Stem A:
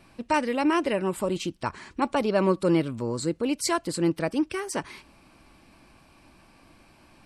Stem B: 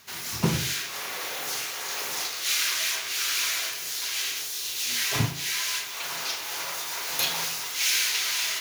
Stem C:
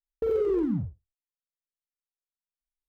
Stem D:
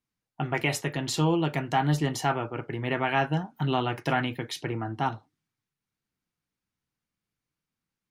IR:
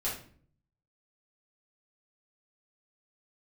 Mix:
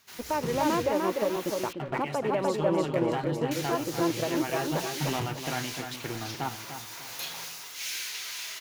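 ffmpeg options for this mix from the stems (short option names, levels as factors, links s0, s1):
-filter_complex "[0:a]lowpass=f=3600:w=0.5412,lowpass=f=3600:w=1.3066,equalizer=f=640:t=o:w=2.3:g=12,volume=0.447,asplit=2[s0][s1];[s1]volume=0.376[s2];[1:a]aeval=exprs='0.376*(cos(1*acos(clip(val(0)/0.376,-1,1)))-cos(1*PI/2))+0.0596*(cos(5*acos(clip(val(0)/0.376,-1,1)))-cos(5*PI/2))':c=same,volume=0.188,asplit=3[s3][s4][s5];[s3]atrim=end=1.73,asetpts=PTS-STARTPTS,afade=t=out:st=1.726:d=0.004:c=hsin[s6];[s4]atrim=start=1.73:end=3.51,asetpts=PTS-STARTPTS,volume=0[s7];[s5]atrim=start=3.51,asetpts=PTS-STARTPTS,afade=t=in:d=0.004:c=hsin[s8];[s6][s7][s8]concat=n=3:v=0:a=1[s9];[2:a]aecho=1:1:1.1:0.92,volume=0.211[s10];[3:a]adelay=1400,volume=0.708,asplit=2[s11][s12];[s12]volume=0.251[s13];[s0][s11]amix=inputs=2:normalize=0,aeval=exprs='sgn(val(0))*max(abs(val(0))-0.00668,0)':c=same,alimiter=limit=0.112:level=0:latency=1:release=290,volume=1[s14];[s2][s13]amix=inputs=2:normalize=0,aecho=0:1:298|596|894|1192|1490:1|0.34|0.116|0.0393|0.0134[s15];[s9][s10][s14][s15]amix=inputs=4:normalize=0"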